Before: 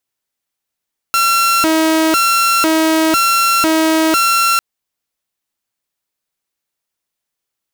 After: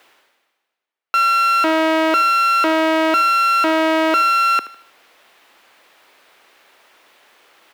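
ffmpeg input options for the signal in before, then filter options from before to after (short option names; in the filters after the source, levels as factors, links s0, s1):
-f lavfi -i "aevalsrc='0.398*(2*mod((839.5*t+520.5/1*(0.5-abs(mod(1*t,1)-0.5))),1)-1)':d=3.45:s=44100"
-filter_complex "[0:a]acrossover=split=310 3400:gain=0.0794 1 0.112[s0][s1][s2];[s0][s1][s2]amix=inputs=3:normalize=0,areverse,acompressor=mode=upward:threshold=0.0562:ratio=2.5,areverse,aecho=1:1:77|154|231|308:0.15|0.0613|0.0252|0.0103"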